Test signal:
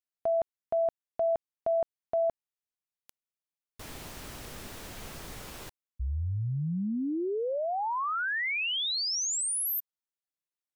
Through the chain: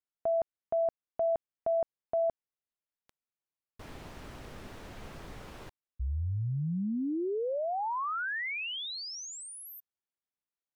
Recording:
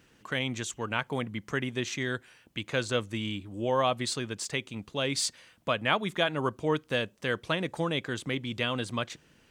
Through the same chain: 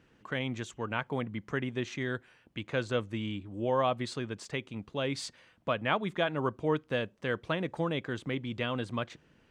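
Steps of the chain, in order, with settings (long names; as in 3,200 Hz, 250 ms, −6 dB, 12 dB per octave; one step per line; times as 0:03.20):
low-pass filter 1,900 Hz 6 dB per octave
level −1 dB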